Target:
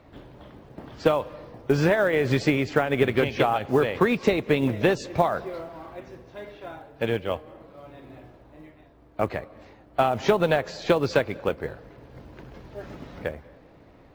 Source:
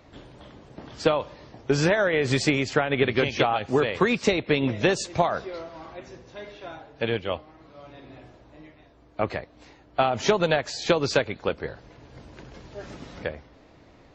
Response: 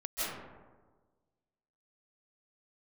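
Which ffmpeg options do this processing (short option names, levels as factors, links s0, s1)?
-filter_complex "[0:a]aemphasis=mode=reproduction:type=75fm,aeval=exprs='0.422*(cos(1*acos(clip(val(0)/0.422,-1,1)))-cos(1*PI/2))+0.00668*(cos(5*acos(clip(val(0)/0.422,-1,1)))-cos(5*PI/2))+0.00596*(cos(7*acos(clip(val(0)/0.422,-1,1)))-cos(7*PI/2))':c=same,acrusher=bits=8:mode=log:mix=0:aa=0.000001,asplit=2[s0][s1];[1:a]atrim=start_sample=2205,asetrate=37485,aresample=44100[s2];[s1][s2]afir=irnorm=-1:irlink=0,volume=0.0376[s3];[s0][s3]amix=inputs=2:normalize=0"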